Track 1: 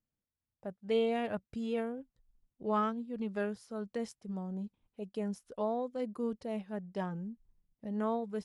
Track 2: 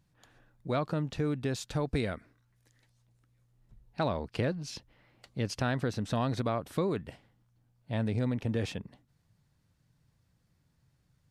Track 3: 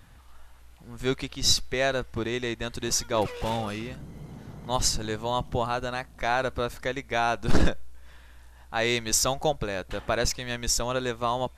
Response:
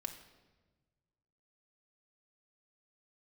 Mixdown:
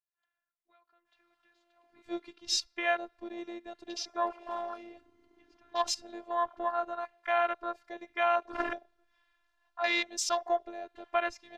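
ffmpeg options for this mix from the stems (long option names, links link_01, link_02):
-filter_complex "[0:a]lowpass=1400,adelay=650,volume=-12.5dB[link_01];[1:a]volume=-13dB,asplit=2[link_02][link_03];[link_03]volume=-12.5dB[link_04];[2:a]highpass=frequency=100:poles=1,adynamicequalizer=threshold=0.00631:dfrequency=4000:dqfactor=1.5:tfrequency=4000:tqfactor=1.5:attack=5:release=100:ratio=0.375:range=2:mode=cutabove:tftype=bell,adelay=1050,volume=1dB,asplit=2[link_05][link_06];[link_06]volume=-9.5dB[link_07];[link_01][link_02]amix=inputs=2:normalize=0,equalizer=frequency=1700:width=0.41:gain=12.5,acompressor=threshold=-42dB:ratio=10,volume=0dB[link_08];[3:a]atrim=start_sample=2205[link_09];[link_04][link_07]amix=inputs=2:normalize=0[link_10];[link_10][link_09]afir=irnorm=-1:irlink=0[link_11];[link_05][link_08][link_11]amix=inputs=3:normalize=0,afwtdn=0.0398,acrossover=split=510 5500:gain=0.1 1 0.158[link_12][link_13][link_14];[link_12][link_13][link_14]amix=inputs=3:normalize=0,afftfilt=real='hypot(re,im)*cos(PI*b)':imag='0':win_size=512:overlap=0.75"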